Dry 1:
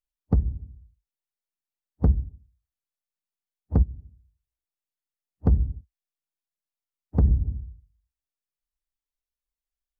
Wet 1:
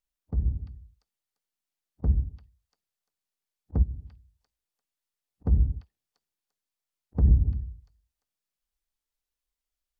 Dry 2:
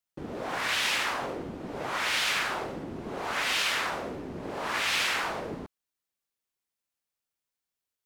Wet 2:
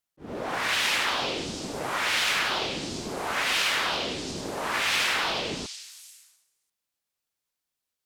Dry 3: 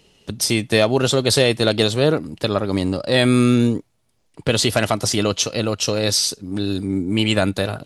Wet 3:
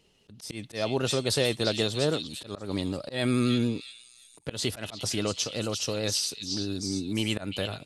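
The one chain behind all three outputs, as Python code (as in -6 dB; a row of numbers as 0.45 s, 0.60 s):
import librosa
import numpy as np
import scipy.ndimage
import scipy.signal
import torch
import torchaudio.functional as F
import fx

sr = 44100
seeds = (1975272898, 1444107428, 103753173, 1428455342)

y = fx.echo_stepped(x, sr, ms=345, hz=3800.0, octaves=0.7, feedback_pct=70, wet_db=-3.5)
y = fx.auto_swell(y, sr, attack_ms=154.0)
y = fx.vibrato(y, sr, rate_hz=11.0, depth_cents=32.0)
y = y * 10.0 ** (-30 / 20.0) / np.sqrt(np.mean(np.square(y)))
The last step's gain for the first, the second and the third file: +2.5 dB, +2.5 dB, -10.0 dB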